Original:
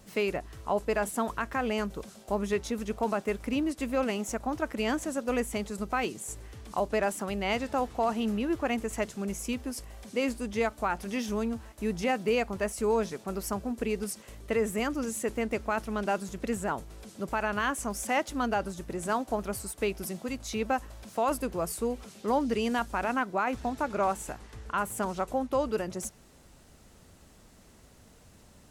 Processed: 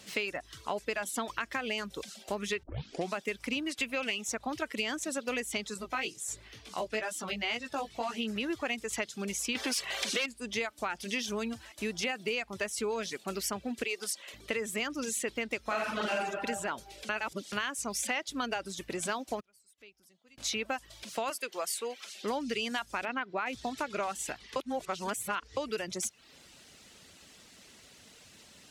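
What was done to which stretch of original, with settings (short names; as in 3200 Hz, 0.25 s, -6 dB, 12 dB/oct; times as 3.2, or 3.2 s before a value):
2.63 tape start 0.51 s
3.66–4.28 bell 2600 Hz +6.5 dB
5.74–8.36 chorus 2.1 Hz, delay 16 ms, depth 3 ms
9.55–10.26 overdrive pedal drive 26 dB, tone 5700 Hz, clips at -17.5 dBFS
13.84–14.34 HPF 390 Hz
15.62–16.17 reverb throw, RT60 1.3 s, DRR -8 dB
17.09–17.52 reverse
19.4–20.38 flipped gate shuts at -34 dBFS, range -29 dB
21.3–22.23 HPF 540 Hz
23.05–23.46 LPF 3300 Hz
24.56–25.57 reverse
whole clip: weighting filter D; reverb removal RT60 0.55 s; compressor 6:1, threshold -30 dBFS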